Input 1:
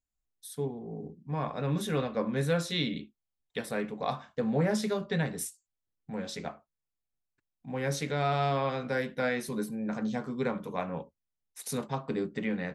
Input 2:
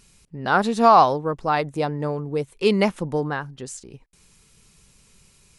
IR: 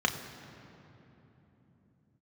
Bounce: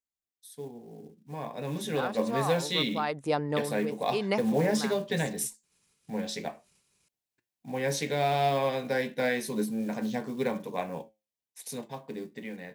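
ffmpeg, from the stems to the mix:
-filter_complex "[0:a]equalizer=f=1300:t=o:w=0.31:g=-15,acrusher=bits=7:mode=log:mix=0:aa=0.000001,flanger=delay=8.3:depth=1.1:regen=79:speed=1.2:shape=sinusoidal,volume=0.944,asplit=2[s0][s1];[1:a]agate=range=0.0224:threshold=0.00501:ratio=3:detection=peak,acompressor=threshold=0.141:ratio=6,adelay=1500,volume=0.316[s2];[s1]apad=whole_len=312352[s3];[s2][s3]sidechaincompress=threshold=0.01:ratio=8:attack=37:release=693[s4];[s0][s4]amix=inputs=2:normalize=0,highpass=f=230:p=1,dynaudnorm=f=210:g=17:m=2.82"

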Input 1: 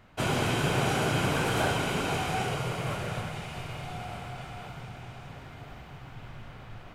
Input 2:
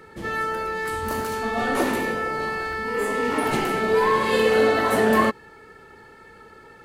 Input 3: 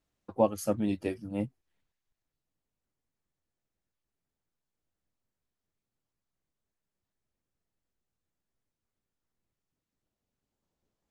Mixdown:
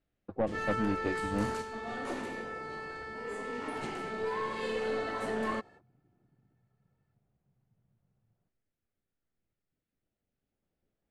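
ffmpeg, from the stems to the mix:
-filter_complex "[0:a]afwtdn=0.0178,alimiter=limit=0.0668:level=0:latency=1,bandpass=f=390:t=q:w=1.2:csg=0,adelay=1550,volume=0.168[s0];[1:a]lowpass=f=9000:w=0.5412,lowpass=f=9000:w=1.3066,agate=range=0.0501:threshold=0.01:ratio=16:detection=peak,adelay=300,volume=0.473[s1];[2:a]lowpass=2600,equalizer=f=1000:t=o:w=0.41:g=-10,alimiter=limit=0.112:level=0:latency=1:release=484,volume=1.26,asplit=2[s2][s3];[s3]apad=whole_len=314975[s4];[s1][s4]sidechaingate=range=0.447:threshold=0.00316:ratio=16:detection=peak[s5];[s0][s5][s2]amix=inputs=3:normalize=0,aeval=exprs='(tanh(12.6*val(0)+0.35)-tanh(0.35))/12.6':c=same"

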